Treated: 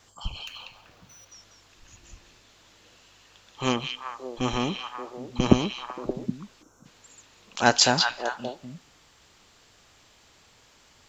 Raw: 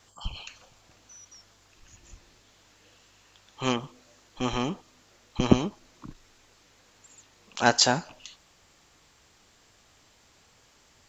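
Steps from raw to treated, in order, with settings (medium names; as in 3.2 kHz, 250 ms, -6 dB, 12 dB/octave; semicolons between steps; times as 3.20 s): 0.47–1.32 s: median filter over 5 samples; repeats whose band climbs or falls 192 ms, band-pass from 3.3 kHz, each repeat -1.4 oct, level -0.5 dB; 6.62–6.85 s: time-frequency box 1.6–5.3 kHz -18 dB; trim +1.5 dB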